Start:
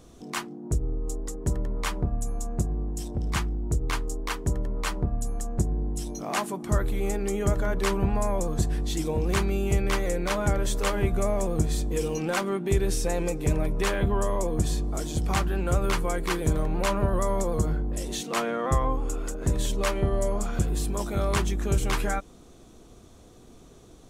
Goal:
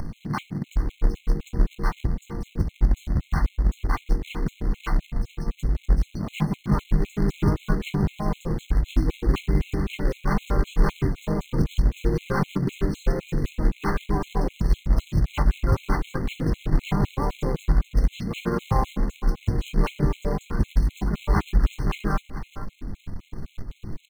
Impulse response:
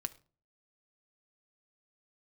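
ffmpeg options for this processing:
-filter_complex "[0:a]acrossover=split=300|3600[a][b][c];[a]acompressor=threshold=-32dB:ratio=20[d];[d][b][c]amix=inputs=3:normalize=0,bandreject=f=1.3k:w=22,asplit=2[e][f];[f]adelay=19,volume=-13.5dB[g];[e][g]amix=inputs=2:normalize=0,aecho=1:1:437|874:0.158|0.0238[h];[1:a]atrim=start_sample=2205[i];[h][i]afir=irnorm=-1:irlink=0,asplit=3[j][k][l];[k]asetrate=33038,aresample=44100,atempo=1.33484,volume=-2dB[m];[l]asetrate=35002,aresample=44100,atempo=1.25992,volume=-6dB[n];[j][m][n]amix=inputs=3:normalize=0,highshelf=f=5k:g=-11.5,bandreject=f=60:t=h:w=6,bandreject=f=120:t=h:w=6,bandreject=f=180:t=h:w=6,bandreject=f=240:t=h:w=6,bandreject=f=300:t=h:w=6,bandreject=f=360:t=h:w=6,bandreject=f=420:t=h:w=6,bandreject=f=480:t=h:w=6,bandreject=f=540:t=h:w=6,bandreject=f=600:t=h:w=6,acrusher=bits=2:mode=log:mix=0:aa=0.000001,bass=f=250:g=10,treble=f=4k:g=-9,acompressor=mode=upward:threshold=-21dB:ratio=2.5,afftfilt=real='re*gt(sin(2*PI*3.9*pts/sr)*(1-2*mod(floor(b*sr/1024/2100),2)),0)':imag='im*gt(sin(2*PI*3.9*pts/sr)*(1-2*mod(floor(b*sr/1024/2100),2)),0)':win_size=1024:overlap=0.75"

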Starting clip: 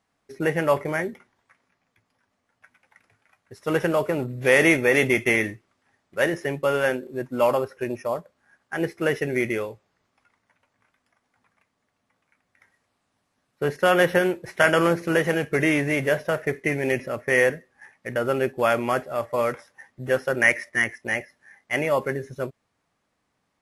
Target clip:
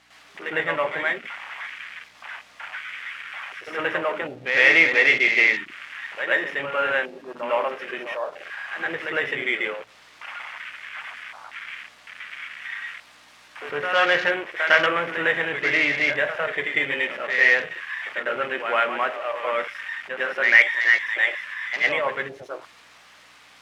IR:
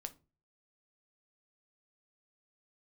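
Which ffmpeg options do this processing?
-filter_complex "[0:a]aeval=exprs='val(0)+0.5*0.0376*sgn(val(0))':c=same,asplit=2[a][b];[1:a]atrim=start_sample=2205,adelay=104[c];[b][c]afir=irnorm=-1:irlink=0,volume=11dB[d];[a][d]amix=inputs=2:normalize=0,aeval=exprs='val(0)+0.0562*(sin(2*PI*60*n/s)+sin(2*PI*2*60*n/s)/2+sin(2*PI*3*60*n/s)/3+sin(2*PI*4*60*n/s)/4+sin(2*PI*5*60*n/s)/5)':c=same,bandpass=f=2.5k:t=q:w=0.84:csg=0,afwtdn=0.0398,volume=-2.5dB"

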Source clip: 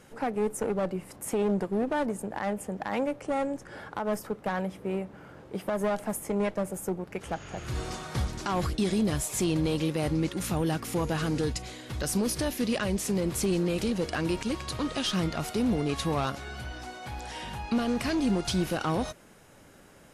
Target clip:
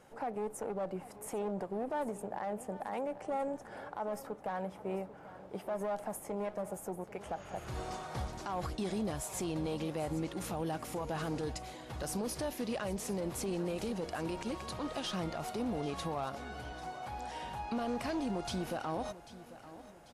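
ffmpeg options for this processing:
-filter_complex "[0:a]equalizer=f=750:t=o:w=1.3:g=9.5,alimiter=limit=-19.5dB:level=0:latency=1:release=52,asplit=2[a][b];[b]aecho=0:1:792|1584|2376|3168:0.158|0.0713|0.0321|0.0144[c];[a][c]amix=inputs=2:normalize=0,volume=-9dB"

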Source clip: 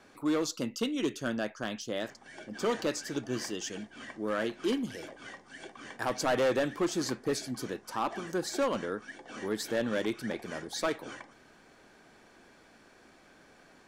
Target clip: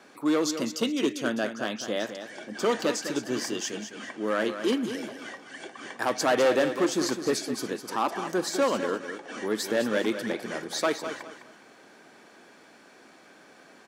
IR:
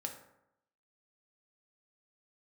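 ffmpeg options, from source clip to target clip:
-af "highpass=190,aecho=1:1:206|412|618:0.335|0.0938|0.0263,volume=5dB"

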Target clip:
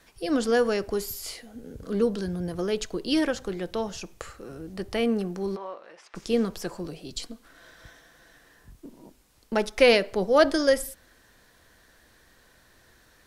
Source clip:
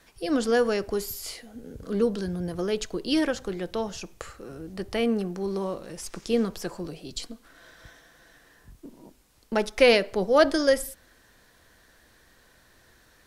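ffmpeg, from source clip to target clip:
-filter_complex "[0:a]asplit=3[a][b][c];[a]afade=t=out:st=5.55:d=0.02[d];[b]highpass=720,lowpass=2.4k,afade=t=in:st=5.55:d=0.02,afade=t=out:st=6.14:d=0.02[e];[c]afade=t=in:st=6.14:d=0.02[f];[d][e][f]amix=inputs=3:normalize=0"

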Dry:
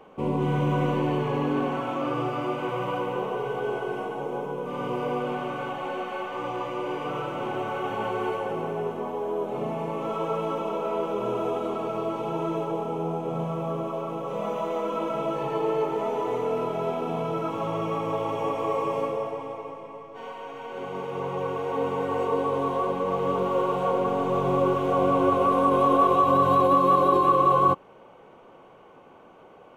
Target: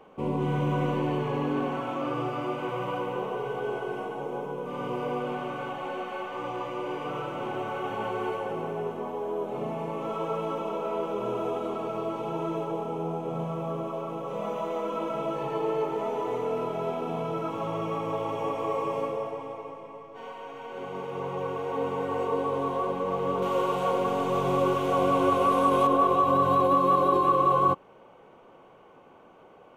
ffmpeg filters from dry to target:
-filter_complex "[0:a]asettb=1/sr,asplit=3[a][b][c];[a]atrim=end=23.424[d];[b]atrim=start=23.42:end=25.87,asetpts=PTS-STARTPTS,afade=t=in:d=0.004:c=qsin,afade=t=out:st=2.446:d=0.004:c=qsin,highshelf=f=2.2k:g=9[e];[c]atrim=start=25.866[f];[d][e]acrossfade=d=0.004:c1=hsin:c2=qsin[g];[g][f]acrossfade=d=0.004:c1=qsin:c2=hsin,volume=-2.5dB"

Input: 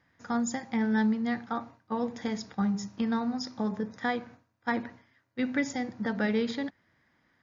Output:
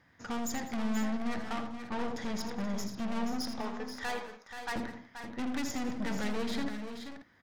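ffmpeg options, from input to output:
-filter_complex "[0:a]asettb=1/sr,asplit=3[a][b][c];[a]atrim=end=3.594[d];[b]atrim=start=3.59:end=4.76,asetpts=PTS-STARTPTS,afade=t=in:d=0.004:c=qsin,afade=t=out:st=1.166:d=0.004:c=qsin,highpass=630[e];[c]atrim=start=4.756[f];[d][e]acrossfade=d=0.004:c1=hsin:c2=qsin[g];[g][f]acrossfade=d=0.004:c1=qsin:c2=hsin,aeval=exprs='(tanh(89.1*val(0)+0.5)-tanh(0.5))/89.1':c=same,aecho=1:1:78|82|197|480|532:0.133|0.299|0.119|0.355|0.211,volume=5.5dB"

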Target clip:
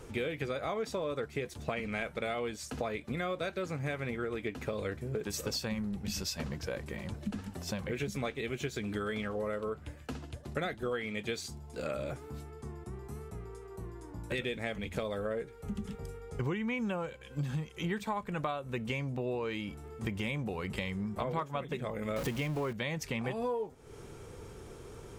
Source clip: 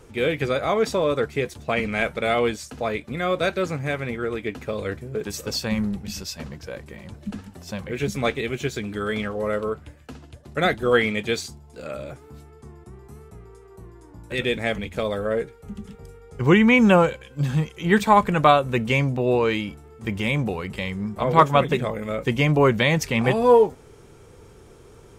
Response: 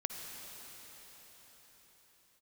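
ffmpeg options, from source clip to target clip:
-filter_complex "[0:a]asettb=1/sr,asplit=3[a][b][c];[a]atrim=end=22.164[d];[b]atrim=start=22.16:end=22.73,asetpts=PTS-STARTPTS,afade=t=in:d=0.004:c=qsin,afade=t=out:st=0.566:d=0.004:c=qsin,aeval=exprs='val(0)+0.5*0.0631*sgn(val(0))':c=same[e];[c]atrim=start=22.726[f];[d][e]acrossfade=d=0.004:c1=hsin:c2=qsin[g];[g][f]acrossfade=d=0.004:c1=qsin:c2=hsin,acompressor=threshold=-32dB:ratio=10"

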